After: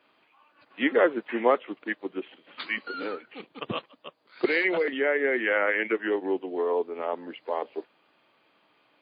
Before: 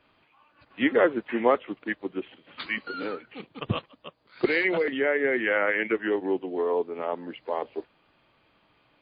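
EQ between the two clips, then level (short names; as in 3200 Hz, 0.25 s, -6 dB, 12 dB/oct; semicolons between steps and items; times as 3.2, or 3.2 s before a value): HPF 250 Hz 12 dB/oct; 0.0 dB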